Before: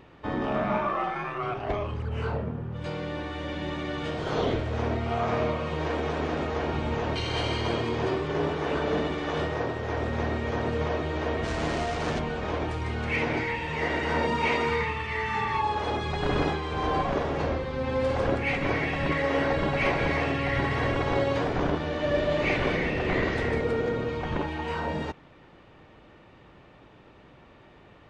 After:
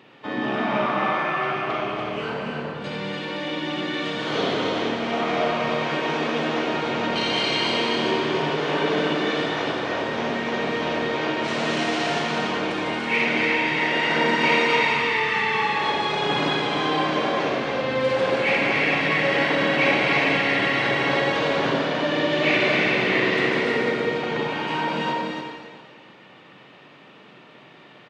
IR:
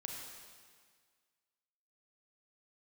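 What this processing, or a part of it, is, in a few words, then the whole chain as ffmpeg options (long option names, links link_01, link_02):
stadium PA: -filter_complex "[0:a]highpass=frequency=150:width=0.5412,highpass=frequency=150:width=1.3066,equalizer=frequency=3200:width_type=o:width=1.8:gain=7.5,aecho=1:1:227.4|288.6:0.282|0.631[link_01];[1:a]atrim=start_sample=2205[link_02];[link_01][link_02]afir=irnorm=-1:irlink=0,volume=4dB"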